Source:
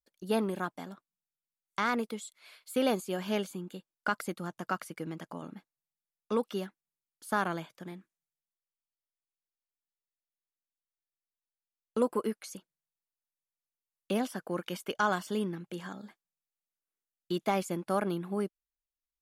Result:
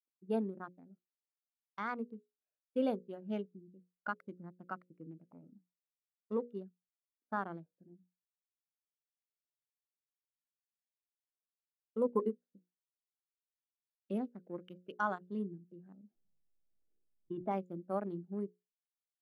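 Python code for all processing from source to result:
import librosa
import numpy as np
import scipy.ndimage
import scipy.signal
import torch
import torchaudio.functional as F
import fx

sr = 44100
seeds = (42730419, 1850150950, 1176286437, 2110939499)

y = fx.chain(x, sr, fx.doubler(ms=29.0, db=-9),
    fx.transient(attack_db=6, sustain_db=-5), at=(12.06, 12.53))
y = fx.chain(y, sr, fx.brickwall_lowpass(high_hz=3600.0),
    fx.high_shelf(hz=2500.0, db=-11.5),
    fx.pre_swell(db_per_s=24.0), at=(16.0, 17.51))
y = fx.wiener(y, sr, points=41)
y = fx.hum_notches(y, sr, base_hz=60, count=9)
y = fx.spectral_expand(y, sr, expansion=1.5)
y = y * 10.0 ** (-4.5 / 20.0)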